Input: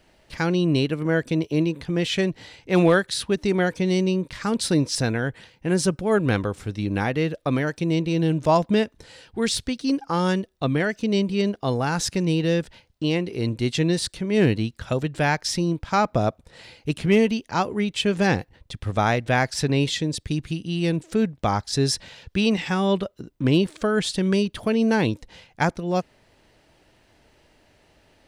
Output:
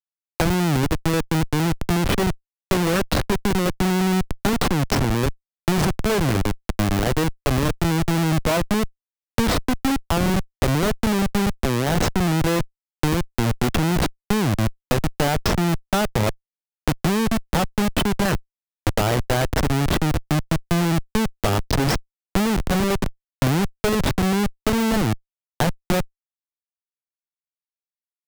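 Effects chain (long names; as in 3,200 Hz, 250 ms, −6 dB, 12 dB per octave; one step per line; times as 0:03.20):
comparator with hysteresis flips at −21.5 dBFS
multiband upward and downward compressor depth 70%
level +4.5 dB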